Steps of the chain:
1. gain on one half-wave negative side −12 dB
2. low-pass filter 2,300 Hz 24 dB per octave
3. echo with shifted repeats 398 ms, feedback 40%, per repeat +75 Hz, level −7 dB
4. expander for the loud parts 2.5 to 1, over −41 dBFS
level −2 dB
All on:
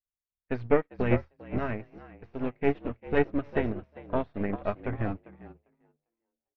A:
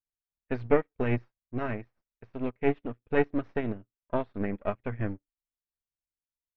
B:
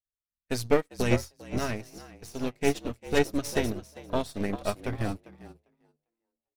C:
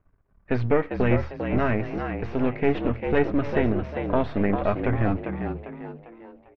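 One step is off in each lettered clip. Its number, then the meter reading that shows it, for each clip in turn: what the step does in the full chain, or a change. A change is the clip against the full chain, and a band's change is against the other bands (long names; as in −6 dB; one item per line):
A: 3, change in momentary loudness spread −3 LU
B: 2, 2 kHz band +1.5 dB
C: 4, 125 Hz band +1.5 dB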